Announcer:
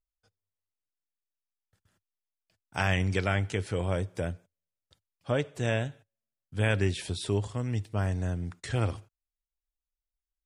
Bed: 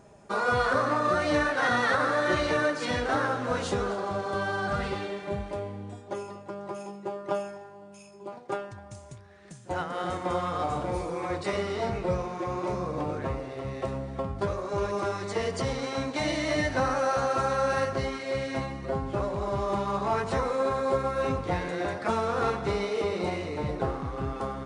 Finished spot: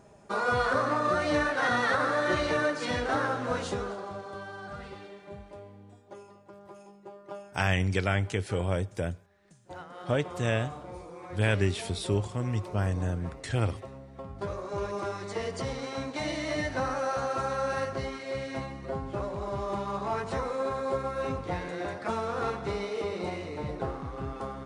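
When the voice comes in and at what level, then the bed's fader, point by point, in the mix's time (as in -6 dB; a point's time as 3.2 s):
4.80 s, +0.5 dB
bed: 3.52 s -1.5 dB
4.49 s -12 dB
14.12 s -12 dB
14.54 s -4 dB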